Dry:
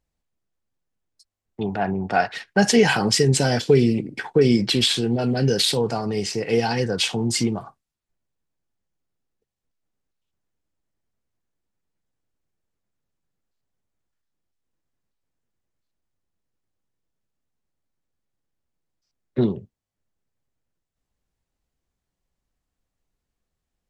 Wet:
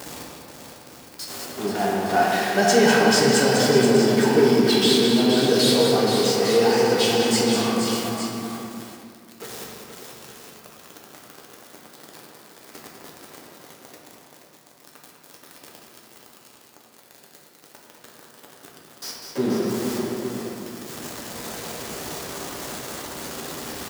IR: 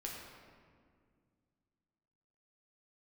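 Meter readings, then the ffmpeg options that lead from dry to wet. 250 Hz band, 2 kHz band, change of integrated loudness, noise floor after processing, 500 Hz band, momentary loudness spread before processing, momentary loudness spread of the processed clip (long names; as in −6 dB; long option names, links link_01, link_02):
+2.0 dB, +3.0 dB, 0.0 dB, −51 dBFS, +4.0 dB, 8 LU, 19 LU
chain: -filter_complex "[0:a]aeval=exprs='val(0)+0.5*0.0794*sgn(val(0))':channel_layout=same,highpass=220,equalizer=frequency=2400:width=2.2:gain=-3.5,aecho=1:1:200|478|598|864:0.447|0.447|0.282|0.316[link_01];[1:a]atrim=start_sample=2205[link_02];[link_01][link_02]afir=irnorm=-1:irlink=0"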